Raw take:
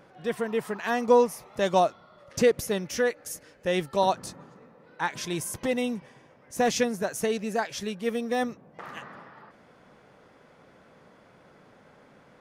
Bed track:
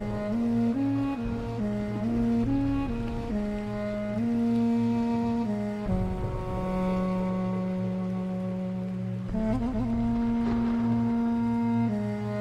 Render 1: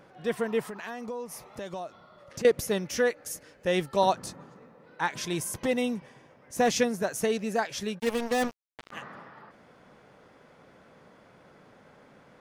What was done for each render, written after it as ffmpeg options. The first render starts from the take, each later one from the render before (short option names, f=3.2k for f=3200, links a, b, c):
-filter_complex "[0:a]asettb=1/sr,asplit=3[a][b][c];[a]atrim=end=0.674[d];[b]atrim=start=0.67:end=2.45,asetpts=PTS-STARTPTS,afade=t=in:d=0.004:c=qsin,afade=t=out:st=1.776:d=0.004:c=qsin,acompressor=threshold=-35dB:ratio=5:attack=3.2:release=140:knee=1:detection=peak[e];[c]atrim=start=2.446[f];[d][e]acrossfade=d=0.004:c1=hsin:c2=qsin[g];[g][f]acrossfade=d=0.004:c1=qsin:c2=hsin,asplit=3[h][i][j];[h]afade=t=out:st=7.98:d=0.02[k];[i]acrusher=bits=4:mix=0:aa=0.5,afade=t=in:st=7.98:d=0.02,afade=t=out:st=8.91:d=0.02[l];[j]afade=t=in:st=8.91:d=0.02[m];[k][l][m]amix=inputs=3:normalize=0"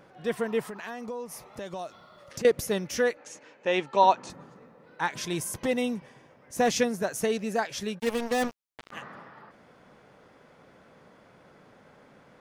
-filter_complex "[0:a]asettb=1/sr,asplit=3[a][b][c];[a]atrim=end=1.794[d];[b]atrim=start=1.79:end=2.38,asetpts=PTS-STARTPTS,afade=t=in:d=0.004:c=qsin,afade=t=out:st=0.586:d=0.004:c=qsin,highshelf=f=2.4k:g=7.5[e];[c]atrim=start=2.376[f];[d][e]acrossfade=d=0.004:c1=hsin:c2=qsin[g];[g][f]acrossfade=d=0.004:c1=qsin:c2=hsin,asettb=1/sr,asplit=3[h][i][j];[h]atrim=end=3.174[k];[i]atrim=start=3.17:end=4.3,asetpts=PTS-STARTPTS,afade=t=in:d=0.004:c=qsin,afade=t=out:st=1.126:d=0.004:c=qsin,highpass=f=150:w=0.5412,highpass=f=150:w=1.3066,equalizer=f=170:t=q:w=4:g=-9,equalizer=f=920:t=q:w=4:g=8,equalizer=f=2.5k:t=q:w=4:g=6,equalizer=f=5k:t=q:w=4:g=-7,lowpass=f=6.6k:w=0.5412,lowpass=f=6.6k:w=1.3066[l];[j]atrim=start=4.296[m];[k][l]acrossfade=d=0.004:c1=hsin:c2=qsin[n];[n][m]acrossfade=d=0.004:c1=qsin:c2=hsin"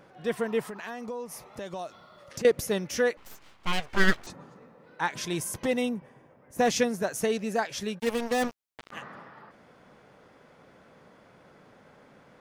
-filter_complex "[0:a]asettb=1/sr,asplit=3[a][b][c];[a]atrim=end=3.174[d];[b]atrim=start=3.17:end=4.27,asetpts=PTS-STARTPTS,afade=t=in:d=0.004:c=qsin,afade=t=out:st=1.096:d=0.004:c=qsin,aeval=exprs='abs(val(0))':c=same[e];[c]atrim=start=4.266[f];[d][e]acrossfade=d=0.004:c1=hsin:c2=qsin[g];[g][f]acrossfade=d=0.004:c1=qsin:c2=hsin,asettb=1/sr,asplit=3[h][i][j];[h]atrim=end=5.894[k];[i]atrim=start=5.89:end=6.59,asetpts=PTS-STARTPTS,afade=t=in:d=0.004:c=qsin,afade=t=out:st=0.696:d=0.004:c=qsin,equalizer=f=4.9k:t=o:w=2.2:g=-13[l];[j]atrim=start=6.586[m];[k][l]acrossfade=d=0.004:c1=hsin:c2=qsin[n];[n][m]acrossfade=d=0.004:c1=qsin:c2=hsin"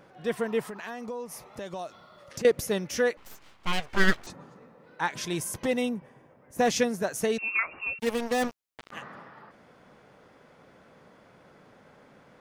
-filter_complex "[0:a]asettb=1/sr,asplit=3[a][b][c];[a]atrim=end=7.384[d];[b]atrim=start=7.38:end=7.99,asetpts=PTS-STARTPTS,afade=t=in:d=0.004:c=qsin,afade=t=out:st=0.606:d=0.004:c=qsin,lowpass=f=2.5k:t=q:w=0.5098,lowpass=f=2.5k:t=q:w=0.6013,lowpass=f=2.5k:t=q:w=0.9,lowpass=f=2.5k:t=q:w=2.563,afreqshift=-2900[e];[c]atrim=start=7.986[f];[d][e]acrossfade=d=0.004:c1=hsin:c2=qsin[g];[g][f]acrossfade=d=0.004:c1=qsin:c2=hsin"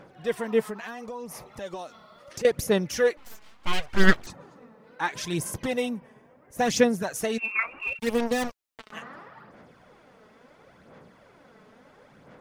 -af "aphaser=in_gain=1:out_gain=1:delay=4.7:decay=0.49:speed=0.73:type=sinusoidal"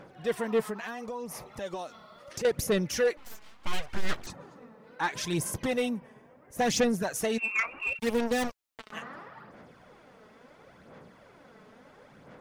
-af "asoftclip=type=tanh:threshold=-19dB"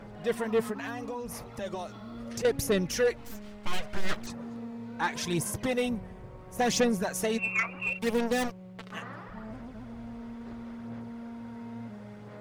-filter_complex "[1:a]volume=-15.5dB[a];[0:a][a]amix=inputs=2:normalize=0"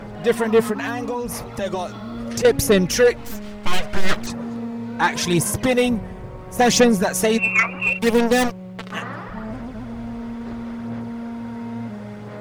-af "volume=11dB"